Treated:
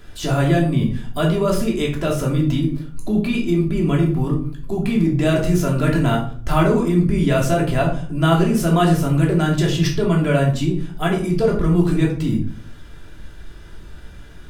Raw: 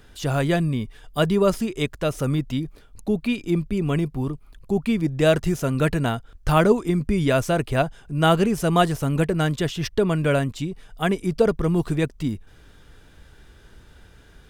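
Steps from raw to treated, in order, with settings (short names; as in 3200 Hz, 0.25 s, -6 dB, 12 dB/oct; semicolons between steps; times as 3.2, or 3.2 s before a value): in parallel at -0.5 dB: negative-ratio compressor -25 dBFS, ratio -1; on the sum: shoebox room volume 470 m³, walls furnished, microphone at 3 m; gain -6 dB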